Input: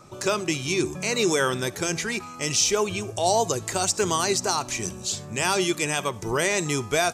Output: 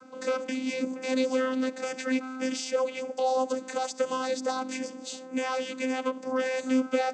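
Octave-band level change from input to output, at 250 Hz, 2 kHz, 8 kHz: 0.0, -7.5, -16.0 dB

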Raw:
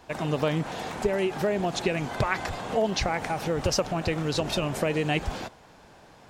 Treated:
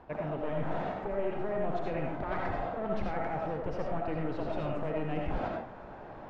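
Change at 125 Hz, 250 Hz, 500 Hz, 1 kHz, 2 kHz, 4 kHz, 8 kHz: -7.5 dB, -6.5 dB, -6.0 dB, -4.5 dB, -10.5 dB, -21.0 dB, under -30 dB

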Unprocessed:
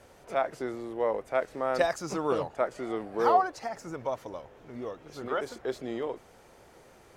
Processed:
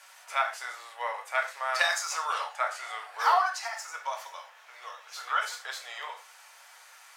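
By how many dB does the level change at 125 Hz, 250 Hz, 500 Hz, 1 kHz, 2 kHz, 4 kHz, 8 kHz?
under -40 dB, under -35 dB, -10.5 dB, +1.5 dB, +8.5 dB, +10.0 dB, +10.0 dB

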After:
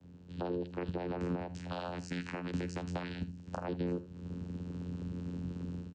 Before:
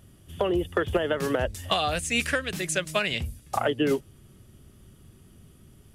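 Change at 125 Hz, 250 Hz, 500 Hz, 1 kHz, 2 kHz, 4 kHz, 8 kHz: -3.0, -6.0, -13.0, -13.0, -18.0, -20.5, -23.0 dB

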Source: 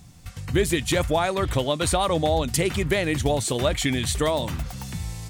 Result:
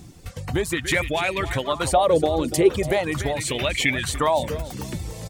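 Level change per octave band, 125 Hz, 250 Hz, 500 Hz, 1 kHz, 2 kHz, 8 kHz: -2.5, 0.0, +2.5, +2.5, +4.0, -1.5 dB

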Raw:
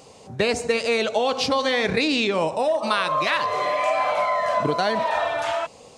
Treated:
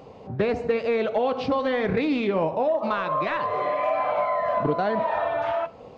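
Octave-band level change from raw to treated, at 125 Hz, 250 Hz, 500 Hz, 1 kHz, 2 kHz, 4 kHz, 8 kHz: +1.0 dB, +0.5 dB, -1.0 dB, -2.5 dB, -7.0 dB, -13.5 dB, under -20 dB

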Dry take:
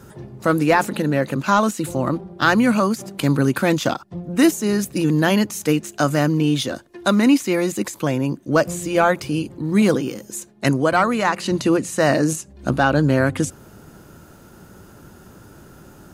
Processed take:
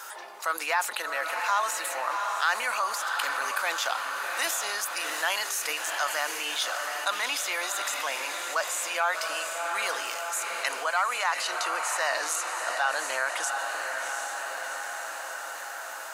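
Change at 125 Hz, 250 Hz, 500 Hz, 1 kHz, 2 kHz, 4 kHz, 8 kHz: under -40 dB, -35.0 dB, -14.5 dB, -5.0 dB, -2.5 dB, -1.0 dB, 0.0 dB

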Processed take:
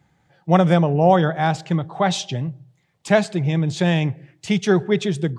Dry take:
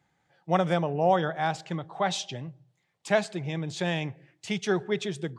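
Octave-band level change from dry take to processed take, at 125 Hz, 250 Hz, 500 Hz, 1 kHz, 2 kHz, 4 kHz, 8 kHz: +13.0, +11.5, +8.0, +7.0, +6.0, +6.0, +6.0 dB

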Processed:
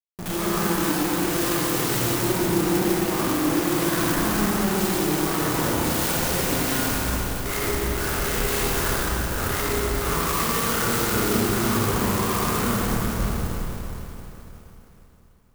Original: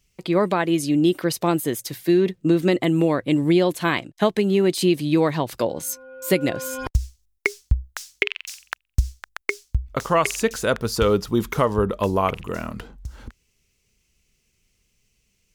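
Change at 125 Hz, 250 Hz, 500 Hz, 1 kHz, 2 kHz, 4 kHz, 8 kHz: -0.5, -2.0, -4.5, +1.0, +1.0, +3.0, +7.0 dB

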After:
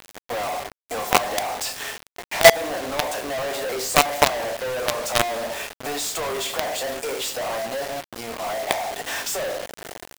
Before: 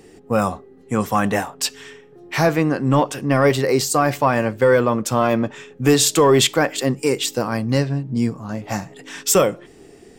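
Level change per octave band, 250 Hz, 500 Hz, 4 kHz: -16.0, -5.0, -1.0 dB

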